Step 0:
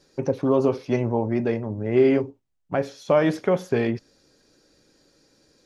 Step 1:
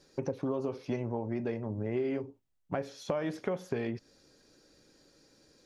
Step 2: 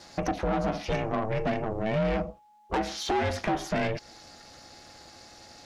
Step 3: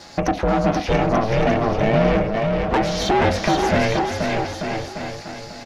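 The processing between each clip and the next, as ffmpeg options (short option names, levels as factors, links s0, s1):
-af "acompressor=threshold=0.0398:ratio=5,volume=0.75"
-filter_complex "[0:a]asplit=2[s0][s1];[s1]highpass=f=720:p=1,volume=17.8,asoftclip=type=tanh:threshold=0.158[s2];[s0][s2]amix=inputs=2:normalize=0,lowpass=f=5200:p=1,volume=0.501,aeval=exprs='val(0)*sin(2*PI*220*n/s)':c=same,aeval=exprs='val(0)+0.00141*sin(2*PI*840*n/s)':c=same,volume=1.12"
-filter_complex "[0:a]equalizer=f=9400:t=o:w=0.97:g=-4,asplit=2[s0][s1];[s1]aecho=0:1:480|888|1235|1530|1780:0.631|0.398|0.251|0.158|0.1[s2];[s0][s2]amix=inputs=2:normalize=0,volume=2.66"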